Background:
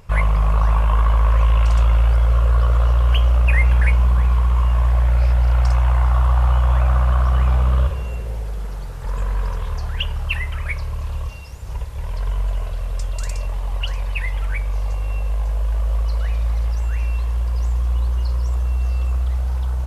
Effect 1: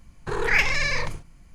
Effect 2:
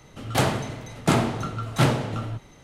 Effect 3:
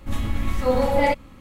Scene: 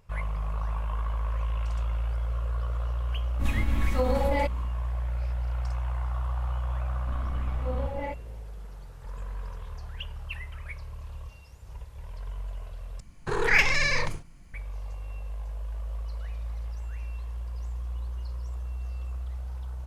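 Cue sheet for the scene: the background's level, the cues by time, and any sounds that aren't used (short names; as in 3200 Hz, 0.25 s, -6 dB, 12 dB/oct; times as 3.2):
background -14.5 dB
3.33 add 3 -3 dB, fades 0.10 s + limiter -14.5 dBFS
7 add 3 -15 dB + LPF 2500 Hz
13 replace with 1 -0.5 dB
not used: 2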